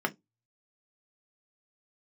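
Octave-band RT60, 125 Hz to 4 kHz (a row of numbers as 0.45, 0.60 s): 0.25, 0.20, 0.20, 0.15, 0.10, 0.15 s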